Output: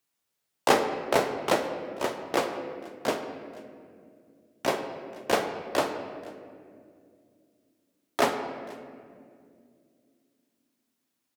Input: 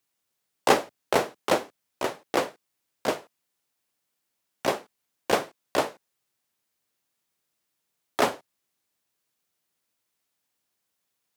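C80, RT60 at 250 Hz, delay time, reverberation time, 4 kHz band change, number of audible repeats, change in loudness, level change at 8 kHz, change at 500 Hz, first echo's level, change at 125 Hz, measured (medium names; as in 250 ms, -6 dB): 8.5 dB, 3.6 s, 484 ms, 2.3 s, -1.0 dB, 1, -1.0 dB, -1.5 dB, 0.0 dB, -22.5 dB, 0.0 dB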